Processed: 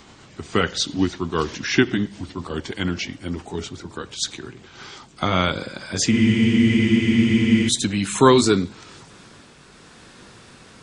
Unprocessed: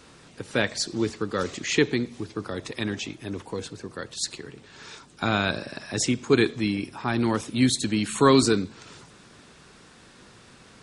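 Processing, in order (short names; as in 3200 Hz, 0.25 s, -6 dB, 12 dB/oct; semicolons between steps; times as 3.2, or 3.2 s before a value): gliding pitch shift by -3.5 st ending unshifted; spectral freeze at 6.14, 1.53 s; gain +5.5 dB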